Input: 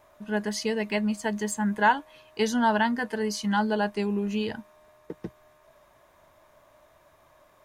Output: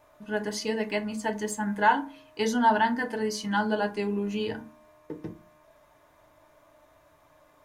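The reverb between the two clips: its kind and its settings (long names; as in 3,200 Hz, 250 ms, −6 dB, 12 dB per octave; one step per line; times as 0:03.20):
feedback delay network reverb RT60 0.32 s, low-frequency decay 1.5×, high-frequency decay 0.55×, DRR 4 dB
level −2.5 dB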